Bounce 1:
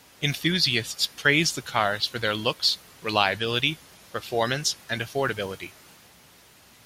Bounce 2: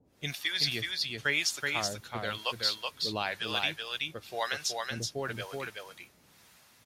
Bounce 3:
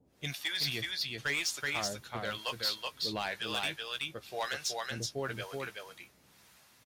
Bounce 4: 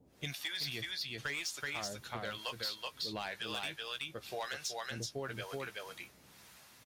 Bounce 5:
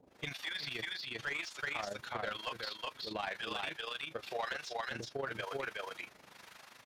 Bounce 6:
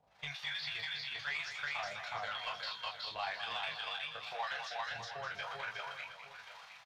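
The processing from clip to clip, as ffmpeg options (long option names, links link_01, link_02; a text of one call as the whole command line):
ffmpeg -i in.wav -filter_complex "[0:a]bandreject=frequency=3000:width=22,acrossover=split=570[link_01][link_02];[link_01]aeval=exprs='val(0)*(1-1/2+1/2*cos(2*PI*1*n/s))':channel_layout=same[link_03];[link_02]aeval=exprs='val(0)*(1-1/2-1/2*cos(2*PI*1*n/s))':channel_layout=same[link_04];[link_03][link_04]amix=inputs=2:normalize=0,asplit=2[link_05][link_06];[link_06]aecho=0:1:376:0.668[link_07];[link_05][link_07]amix=inputs=2:normalize=0,volume=-4.5dB" out.wav
ffmpeg -i in.wav -filter_complex "[0:a]asoftclip=type=hard:threshold=-25dB,asplit=2[link_01][link_02];[link_02]adelay=15,volume=-11.5dB[link_03];[link_01][link_03]amix=inputs=2:normalize=0,volume=-2dB" out.wav
ffmpeg -i in.wav -af "acompressor=threshold=-42dB:ratio=3,volume=3dB" out.wav
ffmpeg -i in.wav -filter_complex "[0:a]tremolo=f=25:d=0.75,acrossover=split=4500[link_01][link_02];[link_02]acompressor=threshold=-52dB:ratio=4:attack=1:release=60[link_03];[link_01][link_03]amix=inputs=2:normalize=0,asplit=2[link_04][link_05];[link_05]highpass=frequency=720:poles=1,volume=16dB,asoftclip=type=tanh:threshold=-27dB[link_06];[link_04][link_06]amix=inputs=2:normalize=0,lowpass=frequency=1900:poles=1,volume=-6dB,volume=1.5dB" out.wav
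ffmpeg -i in.wav -filter_complex "[0:a]firequalizer=gain_entry='entry(160,0);entry(270,-19);entry(710,7);entry(1300,5);entry(3800,7);entry(9900,-6)':delay=0.05:min_phase=1,flanger=delay=19:depth=2.1:speed=1.4,asplit=2[link_01][link_02];[link_02]aecho=0:1:205|710:0.355|0.266[link_03];[link_01][link_03]amix=inputs=2:normalize=0,volume=-3dB" out.wav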